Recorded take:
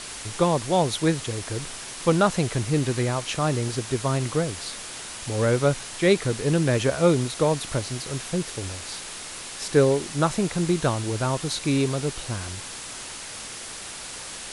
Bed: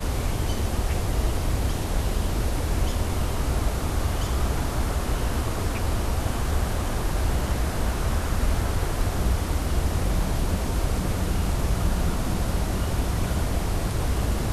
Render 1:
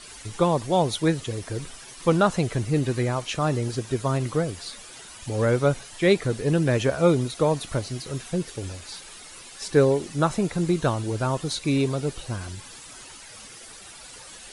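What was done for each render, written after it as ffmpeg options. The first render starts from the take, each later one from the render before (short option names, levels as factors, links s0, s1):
-af "afftdn=nr=11:nf=-37"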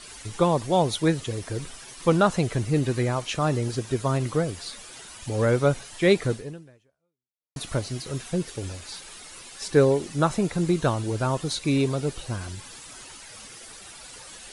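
-filter_complex "[0:a]asplit=2[s0][s1];[s0]atrim=end=7.56,asetpts=PTS-STARTPTS,afade=t=out:st=6.32:d=1.24:c=exp[s2];[s1]atrim=start=7.56,asetpts=PTS-STARTPTS,afade=t=in:d=0.004:c=hsin[s3];[s2][s3]concat=n=2:v=0:a=1"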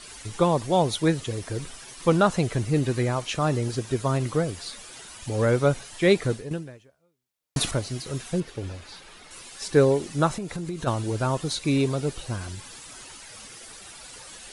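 -filter_complex "[0:a]asettb=1/sr,asplit=3[s0][s1][s2];[s0]atrim=end=8.404[s3];[s1]atrim=start=8.4:end=9.31,asetpts=PTS-STARTPTS,afade=t=in:d=0.004:c=qsin,afade=t=out:st=0.906:d=0.004:c=qsin,equalizer=f=8600:t=o:w=1.6:g=-11.5[s4];[s2]atrim=start=9.306[s5];[s3][s4]acrossfade=d=0.004:c1=hsin:c2=qsin[s6];[s6][s5]acrossfade=d=0.004:c1=qsin:c2=hsin,asplit=3[s7][s8][s9];[s7]afade=t=out:st=10.35:d=0.02[s10];[s8]acompressor=threshold=0.0398:ratio=6:attack=3.2:release=140:knee=1:detection=peak,afade=t=in:st=10.35:d=0.02,afade=t=out:st=10.86:d=0.02[s11];[s9]afade=t=in:st=10.86:d=0.02[s12];[s10][s11][s12]amix=inputs=3:normalize=0,asplit=3[s13][s14][s15];[s13]atrim=end=6.512[s16];[s14]atrim=start=6.508:end=7.712,asetpts=PTS-STARTPTS,volume=3.16[s17];[s15]atrim=start=7.708[s18];[s16][s17]acrossfade=d=0.004:c1=hsin:c2=hsin[s19];[s19][s18]acrossfade=d=0.004:c1=hsin:c2=hsin"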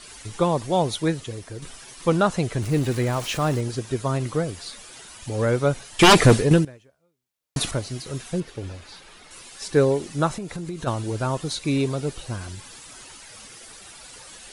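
-filter_complex "[0:a]asettb=1/sr,asplit=3[s0][s1][s2];[s0]atrim=end=2.624[s3];[s1]atrim=start=2.62:end=3.61,asetpts=PTS-STARTPTS,afade=t=in:d=0.004:c=qsin,afade=t=out:st=0.986:d=0.004:c=qsin,aeval=exprs='val(0)+0.5*0.0266*sgn(val(0))':c=same[s4];[s2]atrim=start=3.606[s5];[s3][s4]acrossfade=d=0.004:c1=hsin:c2=qsin[s6];[s6][s5]acrossfade=d=0.004:c1=qsin:c2=hsin,asettb=1/sr,asplit=3[s7][s8][s9];[s7]atrim=end=5.994[s10];[s8]atrim=start=5.99:end=6.65,asetpts=PTS-STARTPTS,afade=t=in:d=0.004:c=qsin,afade=t=out:st=0.656:d=0.004:c=qsin,aeval=exprs='0.422*sin(PI/2*3.98*val(0)/0.422)':c=same[s11];[s9]atrim=start=6.646[s12];[s10][s11]acrossfade=d=0.004:c1=hsin:c2=qsin[s13];[s13][s12]acrossfade=d=0.004:c1=qsin:c2=hsin,asplit=2[s14][s15];[s14]atrim=end=1.62,asetpts=PTS-STARTPTS,afade=t=out:st=0.92:d=0.7:silence=0.473151[s16];[s15]atrim=start=1.62,asetpts=PTS-STARTPTS,afade=t=in:d=0.004:c=hsin:silence=0.473151[s17];[s16][s17]concat=n=2:v=0:a=1"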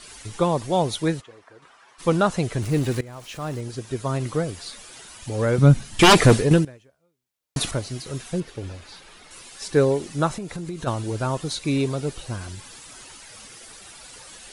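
-filter_complex "[0:a]asplit=3[s0][s1][s2];[s0]afade=t=out:st=1.2:d=0.02[s3];[s1]bandpass=f=1100:t=q:w=1.5,afade=t=in:st=1.2:d=0.02,afade=t=out:st=1.98:d=0.02[s4];[s2]afade=t=in:st=1.98:d=0.02[s5];[s3][s4][s5]amix=inputs=3:normalize=0,asettb=1/sr,asplit=3[s6][s7][s8];[s6]atrim=end=5.584[s9];[s7]atrim=start=5.58:end=6.01,asetpts=PTS-STARTPTS,afade=t=in:d=0.004:c=qsin,afade=t=out:st=0.426:d=0.004:c=qsin,lowshelf=f=320:t=q:w=1.5:g=11[s10];[s8]atrim=start=6.006[s11];[s9][s10]acrossfade=d=0.004:c1=hsin:c2=qsin[s12];[s12][s11]acrossfade=d=0.004:c1=qsin:c2=hsin,asplit=2[s13][s14];[s13]atrim=end=3.01,asetpts=PTS-STARTPTS,afade=t=out:st=3.006:d=0.004:c=hsin:silence=0.1[s15];[s14]atrim=start=3.01,asetpts=PTS-STARTPTS,afade=t=in:d=1.27:silence=0.1[s16];[s15][s16]concat=n=2:v=0:a=1"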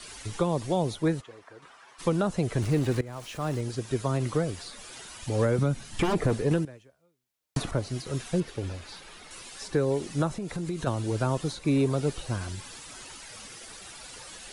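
-filter_complex "[0:a]acrossover=split=300|610|1700|7400[s0][s1][s2][s3][s4];[s0]acompressor=threshold=0.0708:ratio=4[s5];[s1]acompressor=threshold=0.0562:ratio=4[s6];[s2]acompressor=threshold=0.0251:ratio=4[s7];[s3]acompressor=threshold=0.00794:ratio=4[s8];[s4]acompressor=threshold=0.00316:ratio=4[s9];[s5][s6][s7][s8][s9]amix=inputs=5:normalize=0,alimiter=limit=0.188:level=0:latency=1:release=442"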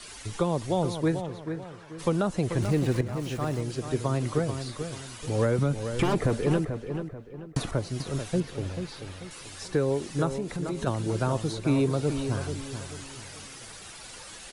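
-filter_complex "[0:a]asplit=2[s0][s1];[s1]adelay=437,lowpass=f=2700:p=1,volume=0.398,asplit=2[s2][s3];[s3]adelay=437,lowpass=f=2700:p=1,volume=0.37,asplit=2[s4][s5];[s5]adelay=437,lowpass=f=2700:p=1,volume=0.37,asplit=2[s6][s7];[s7]adelay=437,lowpass=f=2700:p=1,volume=0.37[s8];[s0][s2][s4][s6][s8]amix=inputs=5:normalize=0"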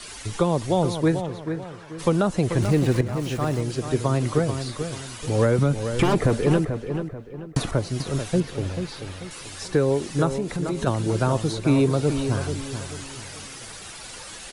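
-af "volume=1.78"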